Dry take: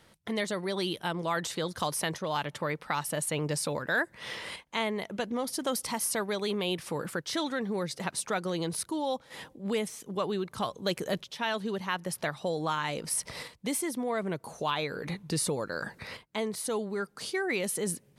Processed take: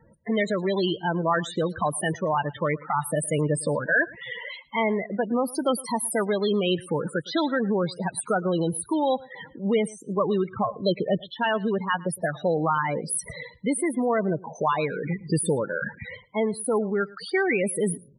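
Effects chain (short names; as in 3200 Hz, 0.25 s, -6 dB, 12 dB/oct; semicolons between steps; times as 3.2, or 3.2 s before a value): dynamic EQ 5400 Hz, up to -4 dB, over -53 dBFS, Q 2.9; loudest bins only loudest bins 16; outdoor echo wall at 19 m, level -22 dB; gain +8 dB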